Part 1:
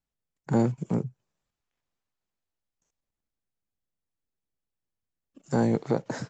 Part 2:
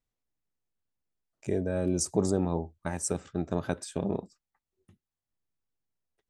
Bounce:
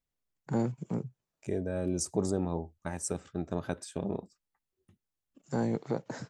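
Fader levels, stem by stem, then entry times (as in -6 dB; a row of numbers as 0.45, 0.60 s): -6.5, -3.5 dB; 0.00, 0.00 s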